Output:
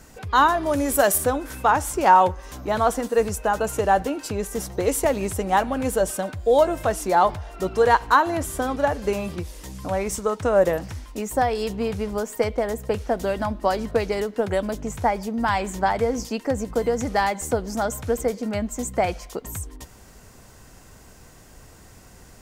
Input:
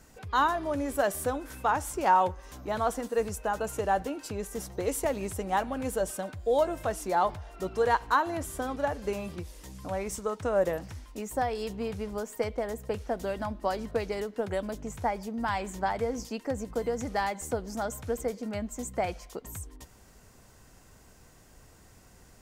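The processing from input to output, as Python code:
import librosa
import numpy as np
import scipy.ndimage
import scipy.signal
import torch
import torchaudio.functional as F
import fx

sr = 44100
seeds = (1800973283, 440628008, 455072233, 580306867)

y = fx.high_shelf(x, sr, hz=5600.0, db=11.0, at=(0.66, 1.18))
y = y * librosa.db_to_amplitude(8.0)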